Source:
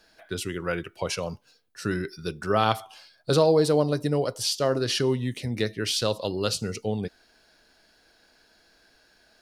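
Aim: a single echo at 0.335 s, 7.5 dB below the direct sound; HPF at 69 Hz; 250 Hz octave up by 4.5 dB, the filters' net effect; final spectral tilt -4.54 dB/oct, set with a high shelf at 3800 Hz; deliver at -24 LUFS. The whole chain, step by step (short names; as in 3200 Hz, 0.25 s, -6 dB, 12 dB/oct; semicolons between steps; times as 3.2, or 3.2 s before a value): HPF 69 Hz; bell 250 Hz +6 dB; high shelf 3800 Hz +5 dB; echo 0.335 s -7.5 dB; gain -0.5 dB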